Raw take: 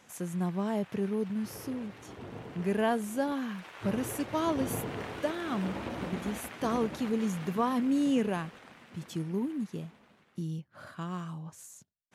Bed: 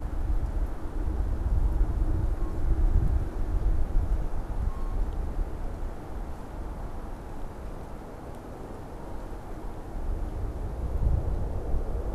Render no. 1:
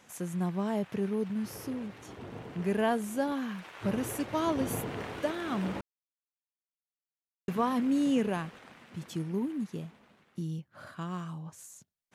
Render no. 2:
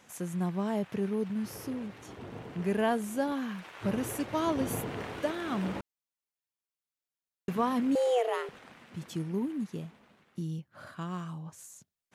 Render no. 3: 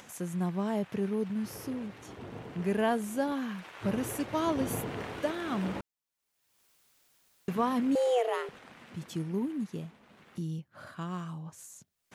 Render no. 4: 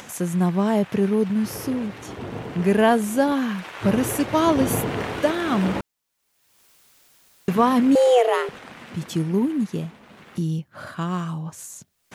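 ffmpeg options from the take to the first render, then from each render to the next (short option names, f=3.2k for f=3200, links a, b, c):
-filter_complex "[0:a]asplit=3[a][b][c];[a]atrim=end=5.81,asetpts=PTS-STARTPTS,afade=t=out:st=5.806:d=0.004:c=hsin[d];[b]atrim=start=5.81:end=7.48,asetpts=PTS-STARTPTS,volume=0[e];[c]atrim=start=7.48,asetpts=PTS-STARTPTS,afade=t=in:d=0.004:c=hsin[f];[d][e][f]concat=n=3:v=0:a=1"
-filter_complex "[0:a]asettb=1/sr,asplit=3[a][b][c];[a]atrim=end=7.954[d];[b]atrim=start=7.95:end=8.49,asetpts=PTS-STARTPTS,afade=t=in:d=0.004:c=qsin,afade=t=out:st=0.536:d=0.004:c=qsin,afreqshift=240[e];[c]atrim=start=8.486[f];[d][e]acrossfade=d=0.004:c1=hsin:c2=qsin[g];[g][f]acrossfade=d=0.004:c1=qsin:c2=hsin"
-af "acompressor=mode=upward:threshold=-46dB:ratio=2.5"
-af "volume=11dB"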